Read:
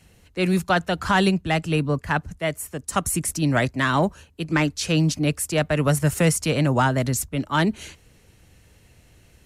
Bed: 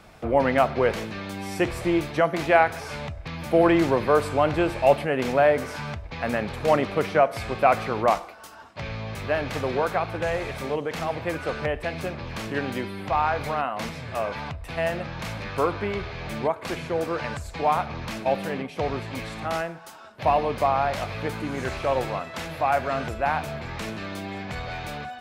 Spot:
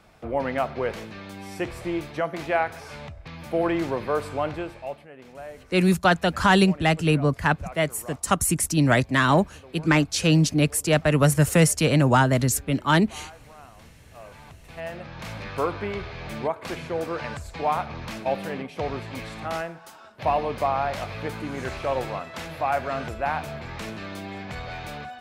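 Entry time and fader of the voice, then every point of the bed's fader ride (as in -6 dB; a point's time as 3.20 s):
5.35 s, +1.5 dB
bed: 4.47 s -5.5 dB
5.08 s -21 dB
13.89 s -21 dB
15.38 s -2 dB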